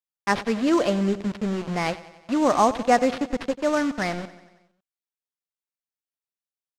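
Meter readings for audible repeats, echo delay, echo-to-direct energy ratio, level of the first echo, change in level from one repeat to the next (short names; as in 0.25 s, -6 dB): 4, 92 ms, -15.0 dB, -17.0 dB, -4.5 dB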